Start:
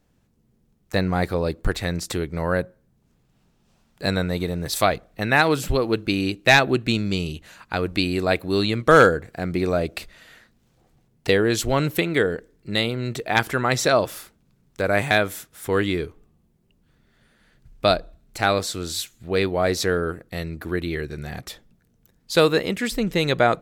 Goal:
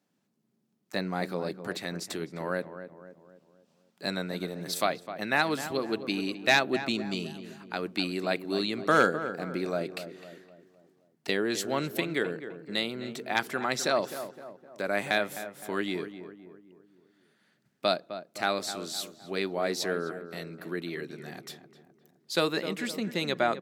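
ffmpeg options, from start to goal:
ffmpeg -i in.wav -filter_complex "[0:a]highpass=frequency=170:width=0.5412,highpass=frequency=170:width=1.3066,equalizer=frequency=4700:width_type=o:width=0.77:gain=2.5,bandreject=frequency=480:width=12,asplit=2[link_01][link_02];[link_02]adelay=257,lowpass=frequency=1500:poles=1,volume=-10.5dB,asplit=2[link_03][link_04];[link_04]adelay=257,lowpass=frequency=1500:poles=1,volume=0.5,asplit=2[link_05][link_06];[link_06]adelay=257,lowpass=frequency=1500:poles=1,volume=0.5,asplit=2[link_07][link_08];[link_08]adelay=257,lowpass=frequency=1500:poles=1,volume=0.5,asplit=2[link_09][link_10];[link_10]adelay=257,lowpass=frequency=1500:poles=1,volume=0.5[link_11];[link_03][link_05][link_07][link_09][link_11]amix=inputs=5:normalize=0[link_12];[link_01][link_12]amix=inputs=2:normalize=0,volume=-8dB" out.wav

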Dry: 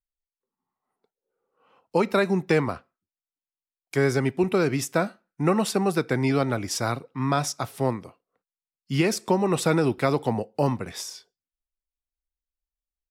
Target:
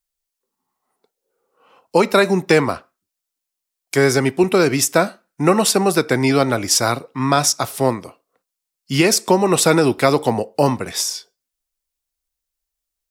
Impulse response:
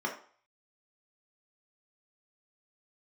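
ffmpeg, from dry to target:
-filter_complex "[0:a]bass=frequency=250:gain=-6,treble=frequency=4000:gain=6,asplit=2[link_01][link_02];[1:a]atrim=start_sample=2205,atrim=end_sample=6174[link_03];[link_02][link_03]afir=irnorm=-1:irlink=0,volume=-26dB[link_04];[link_01][link_04]amix=inputs=2:normalize=0,volume=9dB"

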